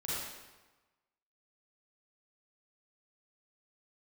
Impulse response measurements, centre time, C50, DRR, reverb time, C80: 105 ms, -5.0 dB, -9.0 dB, 1.2 s, -1.0 dB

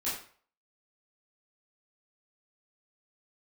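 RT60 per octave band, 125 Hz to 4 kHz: 0.45 s, 0.40 s, 0.45 s, 0.50 s, 0.45 s, 0.40 s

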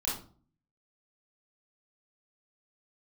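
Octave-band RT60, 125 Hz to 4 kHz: 0.75 s, 0.65 s, 0.45 s, 0.40 s, 0.30 s, 0.30 s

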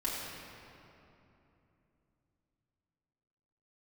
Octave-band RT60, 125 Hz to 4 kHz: 4.3 s, 4.0 s, 3.1 s, 2.8 s, 2.4 s, 1.8 s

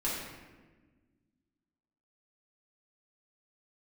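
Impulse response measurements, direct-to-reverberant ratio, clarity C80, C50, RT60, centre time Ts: -8.5 dB, 3.0 dB, 0.5 dB, 1.3 s, 74 ms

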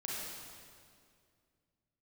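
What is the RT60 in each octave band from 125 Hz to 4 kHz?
no reading, 2.7 s, 2.4 s, 2.1 s, 1.9 s, 1.8 s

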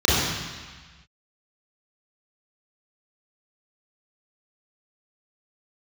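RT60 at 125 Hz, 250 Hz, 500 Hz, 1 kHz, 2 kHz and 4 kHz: 1.6 s, 1.4 s, 1.2 s, 1.5 s, 1.6 s, 1.5 s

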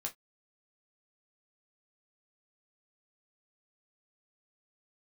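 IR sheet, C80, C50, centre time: 33.0 dB, 19.5 dB, 11 ms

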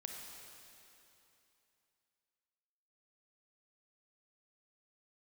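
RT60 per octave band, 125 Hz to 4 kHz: 3.0 s, 3.0 s, 2.9 s, 3.0 s, 2.9 s, 2.8 s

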